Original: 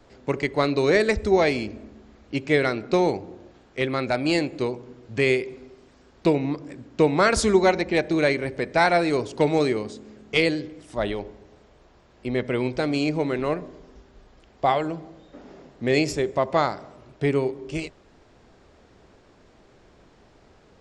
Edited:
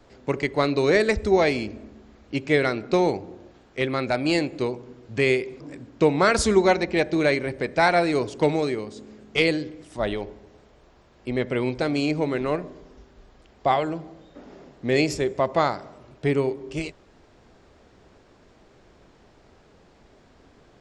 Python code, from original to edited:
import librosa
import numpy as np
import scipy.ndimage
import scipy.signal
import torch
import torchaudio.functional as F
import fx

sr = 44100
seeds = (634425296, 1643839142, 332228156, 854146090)

y = fx.edit(x, sr, fx.cut(start_s=5.6, length_s=0.98),
    fx.clip_gain(start_s=9.54, length_s=0.4, db=-3.5), tone=tone)